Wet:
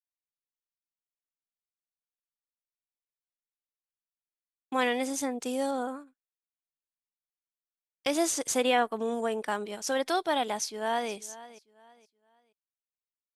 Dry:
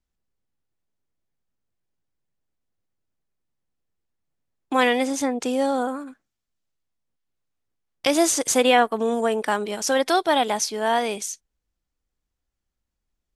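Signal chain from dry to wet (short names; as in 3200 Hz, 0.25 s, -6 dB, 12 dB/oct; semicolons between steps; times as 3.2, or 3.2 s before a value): expander -26 dBFS; 5.03–5.71 high shelf 7600 Hz +11 dB; 10.55–11.11 echo throw 0.47 s, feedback 30%, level -17.5 dB; gain -8 dB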